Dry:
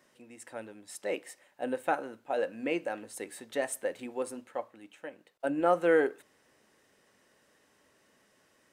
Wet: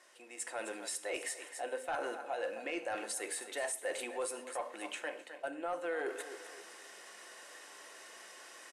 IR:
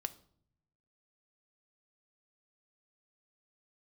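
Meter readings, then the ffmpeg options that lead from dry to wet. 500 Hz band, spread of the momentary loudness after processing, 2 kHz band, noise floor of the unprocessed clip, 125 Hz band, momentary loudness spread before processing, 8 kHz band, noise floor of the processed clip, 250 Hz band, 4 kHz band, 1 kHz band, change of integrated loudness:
−8.0 dB, 13 LU, −3.0 dB, −68 dBFS, below −15 dB, 20 LU, +4.5 dB, −54 dBFS, −11.5 dB, +3.5 dB, −5.5 dB, −7.0 dB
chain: -filter_complex "[0:a]areverse,acompressor=threshold=-39dB:ratio=16,areverse,highpass=580,aecho=1:1:259|518|777:0.168|0.0588|0.0206[link_01];[1:a]atrim=start_sample=2205,afade=type=out:start_time=0.15:duration=0.01,atrim=end_sample=7056,asetrate=32193,aresample=44100[link_02];[link_01][link_02]afir=irnorm=-1:irlink=0,asoftclip=type=tanh:threshold=-35.5dB,dynaudnorm=framelen=360:gausssize=3:maxgain=11dB,lowpass=frequency=11000:width=0.5412,lowpass=frequency=11000:width=1.3066,highshelf=frequency=6700:gain=4.5,alimiter=level_in=8.5dB:limit=-24dB:level=0:latency=1:release=312,volume=-8.5dB,volume=3.5dB"

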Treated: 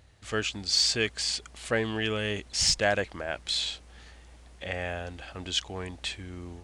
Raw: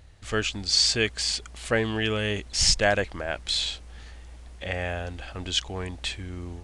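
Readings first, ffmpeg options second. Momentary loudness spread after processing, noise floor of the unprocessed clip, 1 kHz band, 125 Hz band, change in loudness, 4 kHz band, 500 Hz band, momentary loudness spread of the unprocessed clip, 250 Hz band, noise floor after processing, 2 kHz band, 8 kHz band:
16 LU, −45 dBFS, −3.0 dB, −5.0 dB, −3.0 dB, −3.0 dB, −3.0 dB, 15 LU, −3.5 dB, −52 dBFS, −3.0 dB, −3.0 dB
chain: -filter_complex "[0:a]highpass=frequency=92:poles=1,asplit=2[link_01][link_02];[link_02]asoftclip=type=tanh:threshold=-15dB,volume=-9.5dB[link_03];[link_01][link_03]amix=inputs=2:normalize=0,volume=-5dB"

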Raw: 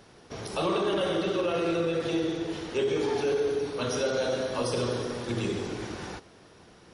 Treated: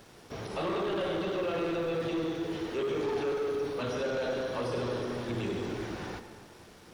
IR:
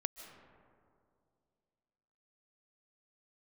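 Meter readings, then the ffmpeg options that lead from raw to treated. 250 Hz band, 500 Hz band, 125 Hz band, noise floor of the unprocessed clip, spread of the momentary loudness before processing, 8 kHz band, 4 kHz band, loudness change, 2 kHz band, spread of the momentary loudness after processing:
−3.5 dB, −3.5 dB, −3.5 dB, −54 dBFS, 9 LU, −10.0 dB, −6.0 dB, −4.0 dB, −3.0 dB, 11 LU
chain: -filter_complex "[0:a]asoftclip=type=tanh:threshold=-27.5dB,acrusher=bits=8:mix=0:aa=0.5,acrossover=split=3800[link_01][link_02];[link_02]acompressor=threshold=-54dB:ratio=4:attack=1:release=60[link_03];[link_01][link_03]amix=inputs=2:normalize=0,asplit=2[link_04][link_05];[1:a]atrim=start_sample=2205,asetrate=61740,aresample=44100[link_06];[link_05][link_06]afir=irnorm=-1:irlink=0,volume=6.5dB[link_07];[link_04][link_07]amix=inputs=2:normalize=0,volume=-7.5dB"

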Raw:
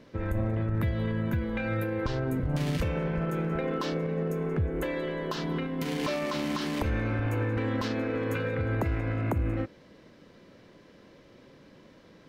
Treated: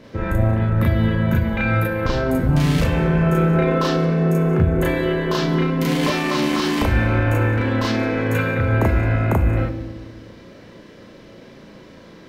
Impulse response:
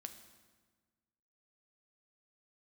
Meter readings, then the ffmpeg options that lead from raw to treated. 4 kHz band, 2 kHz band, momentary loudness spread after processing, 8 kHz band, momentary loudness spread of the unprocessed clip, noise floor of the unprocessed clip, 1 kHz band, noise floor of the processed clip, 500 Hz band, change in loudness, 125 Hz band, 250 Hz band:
+11.5 dB, +12.0 dB, 3 LU, +11.5 dB, 3 LU, −55 dBFS, +12.0 dB, −43 dBFS, +10.0 dB, +11.5 dB, +12.0 dB, +11.0 dB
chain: -filter_complex "[0:a]asplit=2[link_01][link_02];[1:a]atrim=start_sample=2205,adelay=35[link_03];[link_02][link_03]afir=irnorm=-1:irlink=0,volume=6.5dB[link_04];[link_01][link_04]amix=inputs=2:normalize=0,volume=7.5dB"

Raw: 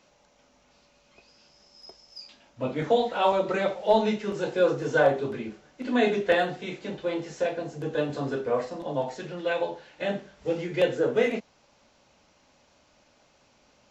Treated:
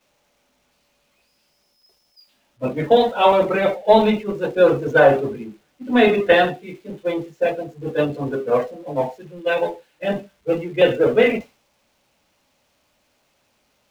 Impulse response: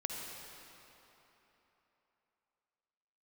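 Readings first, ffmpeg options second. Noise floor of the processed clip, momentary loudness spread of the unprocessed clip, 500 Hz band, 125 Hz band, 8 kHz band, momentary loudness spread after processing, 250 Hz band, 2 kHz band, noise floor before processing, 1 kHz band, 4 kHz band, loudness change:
−66 dBFS, 12 LU, +8.0 dB, +6.5 dB, can't be measured, 13 LU, +7.5 dB, +8.0 dB, −63 dBFS, +8.0 dB, +7.5 dB, +8.0 dB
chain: -filter_complex "[0:a]aeval=exprs='val(0)+0.5*0.0473*sgn(val(0))':channel_layout=same,agate=range=-33dB:threshold=-20dB:ratio=3:detection=peak,asplit=2[link_01][link_02];[link_02]highshelf=frequency=1700:width_type=q:width=1.5:gain=12[link_03];[1:a]atrim=start_sample=2205,afade=type=out:start_time=0.22:duration=0.01,atrim=end_sample=10143,lowpass=4000[link_04];[link_03][link_04]afir=irnorm=-1:irlink=0,volume=-21.5dB[link_05];[link_01][link_05]amix=inputs=2:normalize=0,afftdn=noise_reduction=16:noise_floor=-34,volume=6.5dB"

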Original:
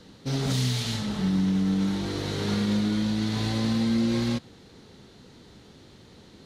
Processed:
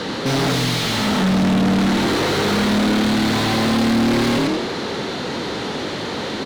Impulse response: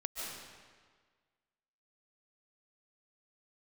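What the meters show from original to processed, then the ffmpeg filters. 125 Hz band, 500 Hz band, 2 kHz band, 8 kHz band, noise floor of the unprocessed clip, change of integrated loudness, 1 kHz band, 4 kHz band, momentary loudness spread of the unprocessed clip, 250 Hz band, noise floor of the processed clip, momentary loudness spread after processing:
+5.0 dB, +14.0 dB, +16.0 dB, +10.0 dB, −52 dBFS, +7.5 dB, +17.0 dB, +11.5 dB, 5 LU, +8.0 dB, −26 dBFS, 8 LU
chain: -filter_complex "[0:a]asplit=5[link_01][link_02][link_03][link_04][link_05];[link_02]adelay=92,afreqshift=39,volume=-6.5dB[link_06];[link_03]adelay=184,afreqshift=78,volume=-15.6dB[link_07];[link_04]adelay=276,afreqshift=117,volume=-24.7dB[link_08];[link_05]adelay=368,afreqshift=156,volume=-33.9dB[link_09];[link_01][link_06][link_07][link_08][link_09]amix=inputs=5:normalize=0,asplit=2[link_10][link_11];[link_11]highpass=frequency=720:poles=1,volume=37dB,asoftclip=type=tanh:threshold=-13.5dB[link_12];[link_10][link_12]amix=inputs=2:normalize=0,lowpass=frequency=1800:poles=1,volume=-6dB,volume=3.5dB"

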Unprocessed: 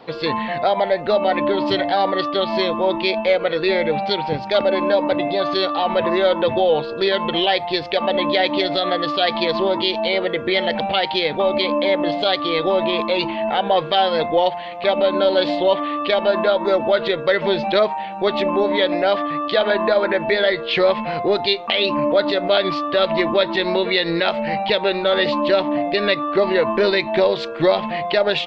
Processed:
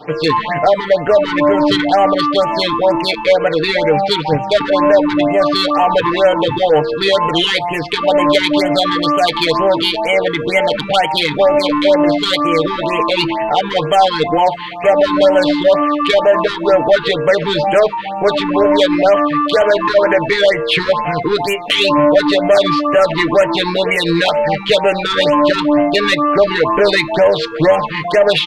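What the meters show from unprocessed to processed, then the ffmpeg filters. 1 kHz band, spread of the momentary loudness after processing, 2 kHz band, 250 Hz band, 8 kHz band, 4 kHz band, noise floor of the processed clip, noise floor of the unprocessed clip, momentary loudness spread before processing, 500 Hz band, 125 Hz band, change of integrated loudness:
+6.0 dB, 4 LU, +5.5 dB, +7.0 dB, can't be measured, +4.5 dB, −23 dBFS, −29 dBFS, 3 LU, +5.5 dB, +8.5 dB, +5.5 dB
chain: -af "aecho=1:1:6.7:0.87,acontrast=87,afftfilt=real='re*(1-between(b*sr/1024,580*pow(4600/580,0.5+0.5*sin(2*PI*2.1*pts/sr))/1.41,580*pow(4600/580,0.5+0.5*sin(2*PI*2.1*pts/sr))*1.41))':imag='im*(1-between(b*sr/1024,580*pow(4600/580,0.5+0.5*sin(2*PI*2.1*pts/sr))/1.41,580*pow(4600/580,0.5+0.5*sin(2*PI*2.1*pts/sr))*1.41))':win_size=1024:overlap=0.75,volume=-1.5dB"

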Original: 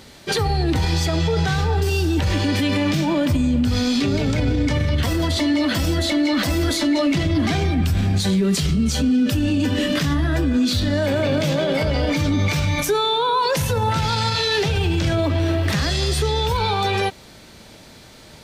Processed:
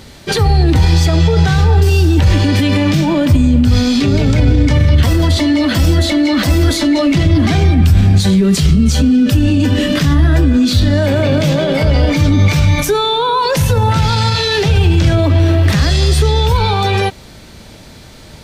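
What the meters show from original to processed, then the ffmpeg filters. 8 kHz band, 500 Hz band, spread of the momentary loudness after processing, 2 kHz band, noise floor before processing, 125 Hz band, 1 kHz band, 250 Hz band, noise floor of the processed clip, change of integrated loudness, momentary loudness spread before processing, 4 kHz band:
+5.0 dB, +5.5 dB, 3 LU, +5.0 dB, −44 dBFS, +10.5 dB, +5.0 dB, +7.0 dB, −37 dBFS, +8.0 dB, 2 LU, +5.0 dB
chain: -af "lowshelf=frequency=140:gain=8.5,volume=5dB"

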